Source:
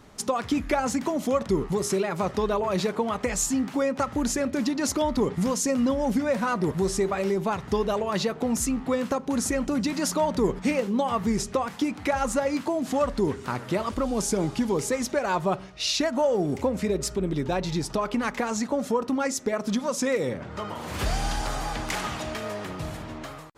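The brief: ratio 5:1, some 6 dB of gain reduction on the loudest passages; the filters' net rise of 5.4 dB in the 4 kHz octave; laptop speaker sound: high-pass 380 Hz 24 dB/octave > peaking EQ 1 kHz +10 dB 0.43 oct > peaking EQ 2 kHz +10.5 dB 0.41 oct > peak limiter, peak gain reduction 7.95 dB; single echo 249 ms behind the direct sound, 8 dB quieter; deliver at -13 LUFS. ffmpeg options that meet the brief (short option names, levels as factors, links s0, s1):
-af "equalizer=f=4000:t=o:g=6,acompressor=threshold=0.0501:ratio=5,highpass=f=380:w=0.5412,highpass=f=380:w=1.3066,equalizer=f=1000:t=o:w=0.43:g=10,equalizer=f=2000:t=o:w=0.41:g=10.5,aecho=1:1:249:0.398,volume=7.08,alimiter=limit=0.75:level=0:latency=1"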